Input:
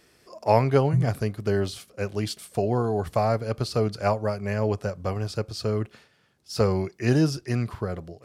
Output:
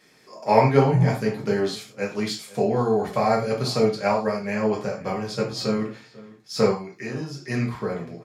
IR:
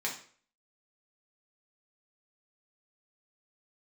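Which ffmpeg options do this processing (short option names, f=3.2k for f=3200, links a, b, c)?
-filter_complex "[0:a]asettb=1/sr,asplit=3[a][b][c];[a]atrim=end=3.264[d];[b]atrim=start=3.26:end=3.88,asetpts=PTS-STARTPTS,afade=t=in:d=0.004:c=qsin,afade=t=out:st=0.616:d=0.004:c=qsin,highshelf=f=5.4k:g=5.5[e];[c]atrim=start=3.876[f];[d][e]acrossfade=d=0.004:c1=hsin:c2=qsin[g];[g][f]acrossfade=d=0.004:c1=qsin:c2=hsin,asettb=1/sr,asplit=3[h][i][j];[h]atrim=end=5.344[k];[i]atrim=start=5.34:end=5.77,asetpts=PTS-STARTPTS,afade=t=in:d=0.004:c=qsin,afade=t=out:st=0.426:d=0.004:c=qsin,asplit=2[l][m];[m]adelay=15,volume=-3dB[n];[l][n]amix=inputs=2:normalize=0,atrim=end_sample=18963[o];[j]atrim=start=5.766[p];[k][o]acrossfade=d=0.004:c1=hsin:c2=qsin[q];[q][p]acrossfade=d=0.004:c1=qsin:c2=hsin,asettb=1/sr,asplit=3[r][s][t];[r]atrim=end=6.714[u];[s]atrim=start=6.71:end=7.4,asetpts=PTS-STARTPTS,afade=t=in:d=0.004:c=qsin,afade=t=out:st=0.686:d=0.004:c=qsin,acompressor=threshold=-31dB:ratio=8[v];[t]atrim=start=7.396[w];[u][v]acrossfade=d=0.004:c1=hsin:c2=qsin[x];[x][w]acrossfade=d=0.004:c1=qsin:c2=hsin,asplit=2[y][z];[z]adelay=495.6,volume=-20dB,highshelf=f=4k:g=-11.2[aa];[y][aa]amix=inputs=2:normalize=0[ab];[1:a]atrim=start_sample=2205,afade=t=out:st=0.17:d=0.01,atrim=end_sample=7938[ac];[ab][ac]afir=irnorm=-1:irlink=0"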